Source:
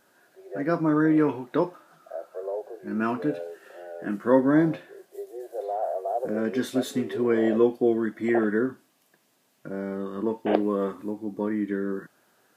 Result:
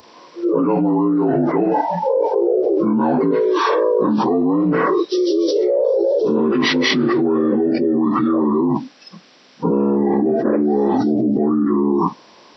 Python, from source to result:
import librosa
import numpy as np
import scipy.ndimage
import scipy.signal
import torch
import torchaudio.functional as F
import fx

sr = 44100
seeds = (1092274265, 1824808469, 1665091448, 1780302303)

y = fx.partial_stretch(x, sr, pct=77)
y = fx.noise_reduce_blind(y, sr, reduce_db=21)
y = fx.env_flatten(y, sr, amount_pct=100)